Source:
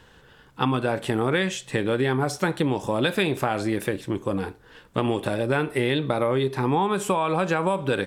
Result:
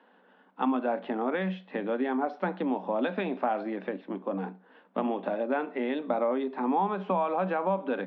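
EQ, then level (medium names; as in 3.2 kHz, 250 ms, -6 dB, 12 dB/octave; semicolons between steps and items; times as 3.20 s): rippled Chebyshev high-pass 180 Hz, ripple 9 dB; Bessel low-pass 2.2 kHz, order 8; 0.0 dB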